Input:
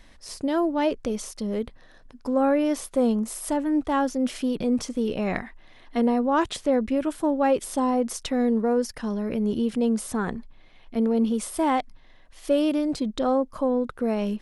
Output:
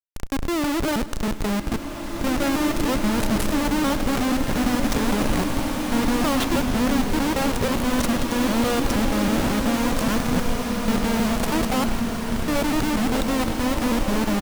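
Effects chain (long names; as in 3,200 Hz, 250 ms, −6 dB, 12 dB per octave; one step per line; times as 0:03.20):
reversed piece by piece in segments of 160 ms
low-shelf EQ 150 Hz +12 dB
comparator with hysteresis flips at −30.5 dBFS
on a send: repeating echo 102 ms, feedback 58%, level −17 dB
on the sum: slow-attack reverb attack 2,330 ms, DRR 1.5 dB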